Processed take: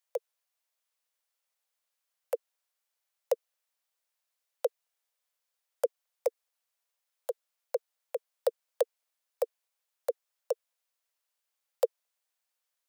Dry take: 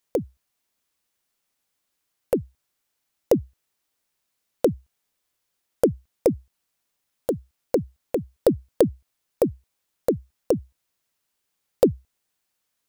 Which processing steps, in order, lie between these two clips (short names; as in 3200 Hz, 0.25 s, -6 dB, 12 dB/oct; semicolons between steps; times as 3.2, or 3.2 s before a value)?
steep high-pass 460 Hz 96 dB/oct; gain -7 dB